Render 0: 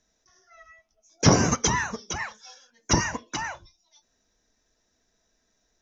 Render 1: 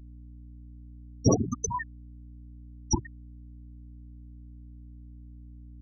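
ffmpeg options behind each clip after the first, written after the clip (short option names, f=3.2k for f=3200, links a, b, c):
-af "afftfilt=real='re*gte(hypot(re,im),0.398)':imag='im*gte(hypot(re,im),0.398)':win_size=1024:overlap=0.75,aeval=exprs='val(0)+0.00631*(sin(2*PI*60*n/s)+sin(2*PI*2*60*n/s)/2+sin(2*PI*3*60*n/s)/3+sin(2*PI*4*60*n/s)/4+sin(2*PI*5*60*n/s)/5)':c=same,equalizer=f=160:w=4.2:g=-14"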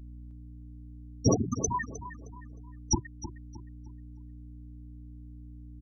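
-filter_complex "[0:a]asplit=2[a][b];[b]alimiter=limit=-18dB:level=0:latency=1:release=402,volume=3dB[c];[a][c]amix=inputs=2:normalize=0,asplit=2[d][e];[e]adelay=310,lowpass=f=3.7k:p=1,volume=-12dB,asplit=2[f][g];[g]adelay=310,lowpass=f=3.7k:p=1,volume=0.36,asplit=2[h][i];[i]adelay=310,lowpass=f=3.7k:p=1,volume=0.36,asplit=2[j][k];[k]adelay=310,lowpass=f=3.7k:p=1,volume=0.36[l];[d][f][h][j][l]amix=inputs=5:normalize=0,volume=-6dB"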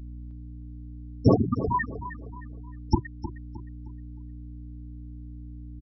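-af "aresample=11025,aresample=44100,volume=5.5dB"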